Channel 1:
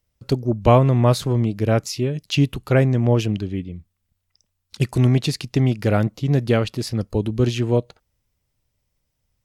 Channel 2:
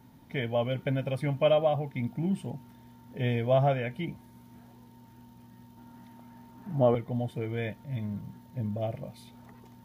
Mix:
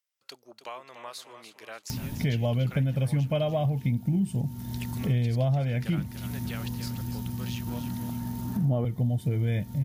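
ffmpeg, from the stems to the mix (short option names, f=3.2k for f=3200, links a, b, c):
-filter_complex "[0:a]highpass=1.2k,acompressor=threshold=-32dB:ratio=2.5,volume=-7.5dB,asplit=2[a][b];[b]volume=-9.5dB[c];[1:a]bass=f=250:g=14,treble=f=4k:g=13,acompressor=mode=upward:threshold=-25dB:ratio=2.5,adelay=1900,volume=1.5dB[d];[c]aecho=0:1:292|584|876|1168|1460:1|0.36|0.13|0.0467|0.0168[e];[a][d][e]amix=inputs=3:normalize=0,acompressor=threshold=-23dB:ratio=6"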